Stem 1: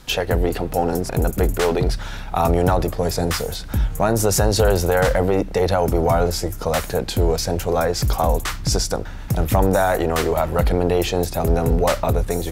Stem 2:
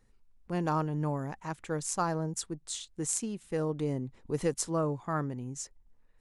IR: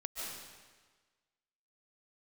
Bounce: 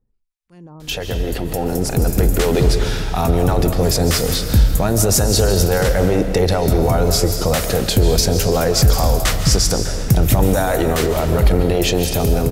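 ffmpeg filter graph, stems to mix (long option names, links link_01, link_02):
-filter_complex "[0:a]alimiter=limit=-14dB:level=0:latency=1:release=82,dynaudnorm=framelen=110:gausssize=17:maxgain=7dB,adelay=800,volume=-0.5dB,asplit=2[link_01][link_02];[link_02]volume=-3dB[link_03];[1:a]alimiter=level_in=0.5dB:limit=-24dB:level=0:latency=1,volume=-0.5dB,acrossover=split=1100[link_04][link_05];[link_04]aeval=exprs='val(0)*(1-1/2+1/2*cos(2*PI*1.3*n/s))':channel_layout=same[link_06];[link_05]aeval=exprs='val(0)*(1-1/2-1/2*cos(2*PI*1.3*n/s))':channel_layout=same[link_07];[link_06][link_07]amix=inputs=2:normalize=0,volume=-1.5dB[link_08];[2:a]atrim=start_sample=2205[link_09];[link_03][link_09]afir=irnorm=-1:irlink=0[link_10];[link_01][link_08][link_10]amix=inputs=3:normalize=0,equalizer=frequency=940:width=0.57:gain=-6.5"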